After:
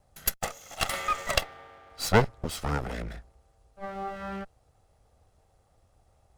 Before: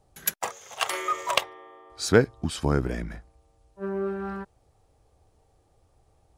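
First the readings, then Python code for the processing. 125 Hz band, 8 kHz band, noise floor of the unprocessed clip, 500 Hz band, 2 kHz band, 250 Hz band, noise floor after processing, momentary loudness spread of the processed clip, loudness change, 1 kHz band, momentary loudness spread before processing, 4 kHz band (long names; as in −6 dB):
−2.5 dB, −1.5 dB, −66 dBFS, −5.0 dB, −1.5 dB, −6.0 dB, −67 dBFS, 19 LU, −2.5 dB, −0.5 dB, 17 LU, −1.5 dB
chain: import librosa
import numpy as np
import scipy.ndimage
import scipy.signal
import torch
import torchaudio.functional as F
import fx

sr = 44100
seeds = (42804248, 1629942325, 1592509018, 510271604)

y = fx.lower_of_two(x, sr, delay_ms=1.5)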